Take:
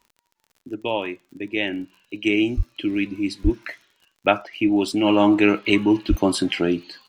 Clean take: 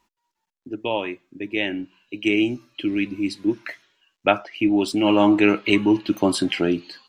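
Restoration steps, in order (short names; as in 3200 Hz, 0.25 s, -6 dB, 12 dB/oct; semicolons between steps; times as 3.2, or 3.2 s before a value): de-click; de-plosive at 2.56/3.43/6.09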